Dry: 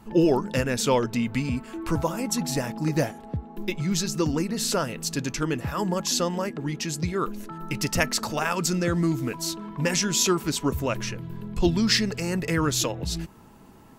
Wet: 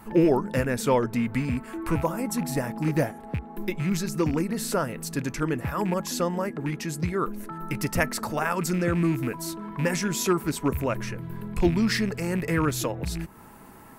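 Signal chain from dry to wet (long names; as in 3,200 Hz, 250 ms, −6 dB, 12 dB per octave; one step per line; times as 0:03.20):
loose part that buzzes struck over −27 dBFS, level −26 dBFS
flat-topped bell 4,400 Hz −8.5 dB
one half of a high-frequency compander encoder only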